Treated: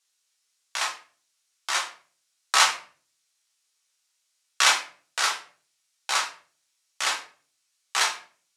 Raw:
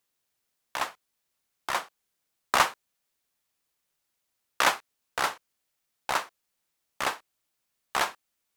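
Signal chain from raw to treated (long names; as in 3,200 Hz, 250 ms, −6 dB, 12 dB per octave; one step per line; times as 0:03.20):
meter weighting curve ITU-R 468
convolution reverb RT60 0.45 s, pre-delay 5 ms, DRR −2 dB
level −4.5 dB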